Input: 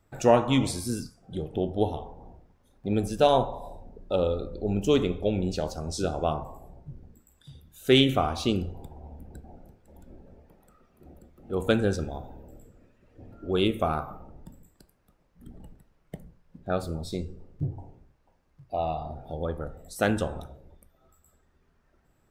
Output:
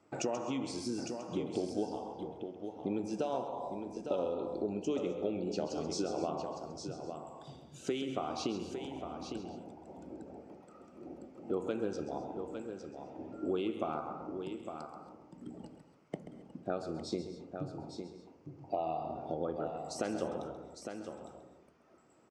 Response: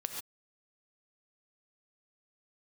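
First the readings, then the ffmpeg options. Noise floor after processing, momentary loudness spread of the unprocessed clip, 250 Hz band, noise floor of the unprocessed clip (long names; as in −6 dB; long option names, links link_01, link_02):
−62 dBFS, 24 LU, −8.0 dB, −67 dBFS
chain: -filter_complex "[0:a]alimiter=limit=-17dB:level=0:latency=1:release=474,acompressor=threshold=-36dB:ratio=6,highpass=220,equalizer=frequency=320:width_type=q:width=4:gain=5,equalizer=frequency=1700:width_type=q:width=4:gain=-8,equalizer=frequency=3700:width_type=q:width=4:gain=-9,lowpass=frequency=6700:width=0.5412,lowpass=frequency=6700:width=1.3066,aecho=1:1:857:0.422,asplit=2[link_01][link_02];[1:a]atrim=start_sample=2205,adelay=133[link_03];[link_02][link_03]afir=irnorm=-1:irlink=0,volume=-10.5dB[link_04];[link_01][link_04]amix=inputs=2:normalize=0,volume=4dB"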